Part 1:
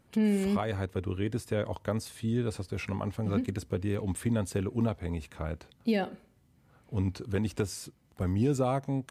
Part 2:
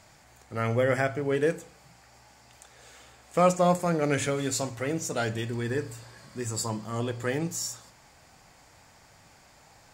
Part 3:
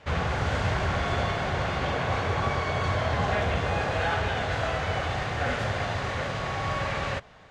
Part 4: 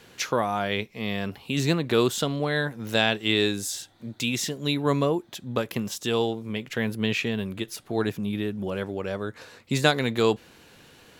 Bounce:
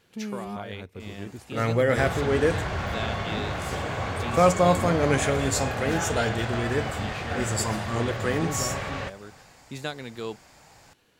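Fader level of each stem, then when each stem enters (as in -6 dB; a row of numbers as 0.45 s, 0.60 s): -8.5 dB, +2.5 dB, -3.0 dB, -12.5 dB; 0.00 s, 1.00 s, 1.90 s, 0.00 s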